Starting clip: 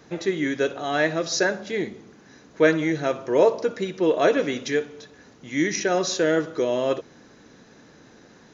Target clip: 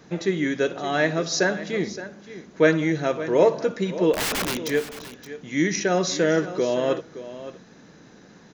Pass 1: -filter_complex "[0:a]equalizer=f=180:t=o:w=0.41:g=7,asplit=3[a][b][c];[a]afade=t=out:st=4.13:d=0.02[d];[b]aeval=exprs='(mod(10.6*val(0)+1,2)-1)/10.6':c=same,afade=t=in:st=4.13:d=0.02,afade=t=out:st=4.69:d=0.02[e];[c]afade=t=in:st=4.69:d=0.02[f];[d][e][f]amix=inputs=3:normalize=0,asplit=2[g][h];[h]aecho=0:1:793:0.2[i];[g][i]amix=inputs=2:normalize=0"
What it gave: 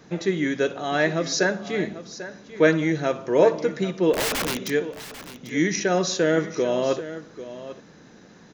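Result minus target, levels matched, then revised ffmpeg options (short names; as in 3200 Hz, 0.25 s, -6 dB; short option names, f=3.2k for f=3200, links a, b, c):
echo 0.224 s late
-filter_complex "[0:a]equalizer=f=180:t=o:w=0.41:g=7,asplit=3[a][b][c];[a]afade=t=out:st=4.13:d=0.02[d];[b]aeval=exprs='(mod(10.6*val(0)+1,2)-1)/10.6':c=same,afade=t=in:st=4.13:d=0.02,afade=t=out:st=4.69:d=0.02[e];[c]afade=t=in:st=4.69:d=0.02[f];[d][e][f]amix=inputs=3:normalize=0,asplit=2[g][h];[h]aecho=0:1:569:0.2[i];[g][i]amix=inputs=2:normalize=0"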